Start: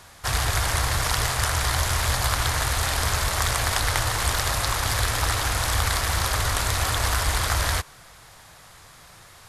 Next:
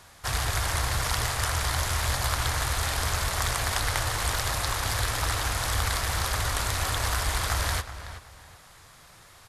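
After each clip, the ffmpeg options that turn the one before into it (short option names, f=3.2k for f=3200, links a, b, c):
-filter_complex "[0:a]asplit=2[a][b];[b]adelay=375,lowpass=f=3.6k:p=1,volume=-12dB,asplit=2[c][d];[d]adelay=375,lowpass=f=3.6k:p=1,volume=0.26,asplit=2[e][f];[f]adelay=375,lowpass=f=3.6k:p=1,volume=0.26[g];[a][c][e][g]amix=inputs=4:normalize=0,volume=-4dB"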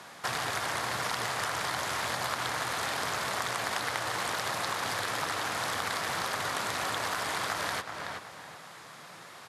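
-af "highpass=f=160:w=0.5412,highpass=f=160:w=1.3066,aemphasis=mode=reproduction:type=cd,acompressor=threshold=-38dB:ratio=3,volume=6.5dB"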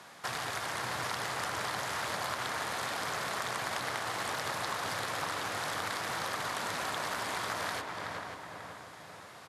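-filter_complex "[0:a]asplit=2[a][b];[b]adelay=540,lowpass=f=1.6k:p=1,volume=-3.5dB,asplit=2[c][d];[d]adelay=540,lowpass=f=1.6k:p=1,volume=0.47,asplit=2[e][f];[f]adelay=540,lowpass=f=1.6k:p=1,volume=0.47,asplit=2[g][h];[h]adelay=540,lowpass=f=1.6k:p=1,volume=0.47,asplit=2[i][j];[j]adelay=540,lowpass=f=1.6k:p=1,volume=0.47,asplit=2[k][l];[l]adelay=540,lowpass=f=1.6k:p=1,volume=0.47[m];[a][c][e][g][i][k][m]amix=inputs=7:normalize=0,volume=-4dB"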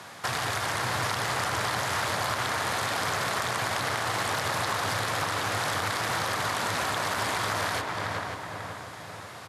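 -filter_complex "[0:a]equalizer=f=100:w=2.4:g=8.5,asplit=2[a][b];[b]alimiter=level_in=3dB:limit=-24dB:level=0:latency=1:release=38,volume=-3dB,volume=1dB[c];[a][c]amix=inputs=2:normalize=0,volume=1dB"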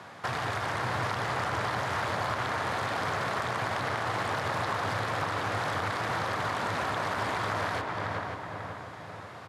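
-af "lowpass=f=1.8k:p=1"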